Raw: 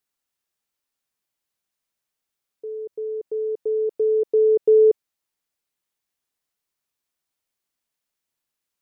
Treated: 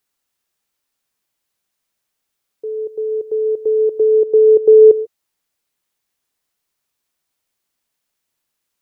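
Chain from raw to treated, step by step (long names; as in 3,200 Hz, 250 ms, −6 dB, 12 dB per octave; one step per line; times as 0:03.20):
0:04.00–0:04.73: high-frequency loss of the air 190 metres
on a send: convolution reverb, pre-delay 3 ms, DRR 19 dB
on the sum: level +7 dB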